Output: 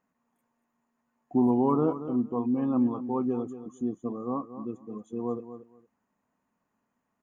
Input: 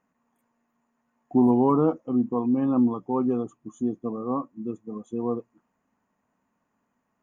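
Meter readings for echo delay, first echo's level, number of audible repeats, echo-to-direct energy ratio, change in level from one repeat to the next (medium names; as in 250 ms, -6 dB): 231 ms, -12.0 dB, 2, -12.0 dB, -15.0 dB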